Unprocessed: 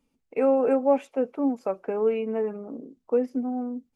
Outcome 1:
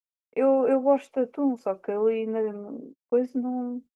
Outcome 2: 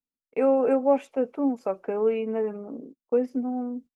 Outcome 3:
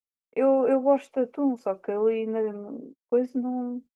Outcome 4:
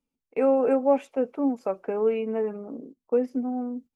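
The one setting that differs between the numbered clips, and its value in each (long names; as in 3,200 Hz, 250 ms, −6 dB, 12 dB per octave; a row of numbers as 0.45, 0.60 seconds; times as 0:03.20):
noise gate, range: −55, −27, −40, −12 decibels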